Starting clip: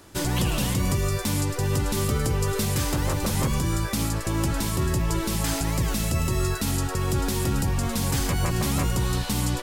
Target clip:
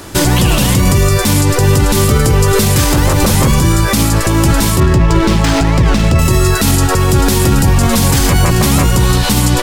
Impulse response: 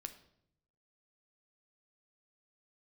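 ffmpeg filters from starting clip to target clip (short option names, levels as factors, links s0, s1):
-filter_complex "[0:a]asettb=1/sr,asplit=3[s0][s1][s2];[s0]atrim=end=4.804[s3];[s1]atrim=start=4.8:end=6.19,asetpts=PTS-STARTPTS,afade=t=in:d=0.004:c=qsin,afade=t=out:st=1.386:d=0.004:c=qsin,adynamicsmooth=sensitivity=4.5:basefreq=2200[s4];[s2]atrim=start=6.186[s5];[s3][s4]acrossfade=d=0.004:c1=hsin:c2=qsin[s6];[s6][s5]acrossfade=d=0.004:c1=qsin:c2=hsin,alimiter=level_in=10:limit=0.891:release=50:level=0:latency=1,volume=0.891"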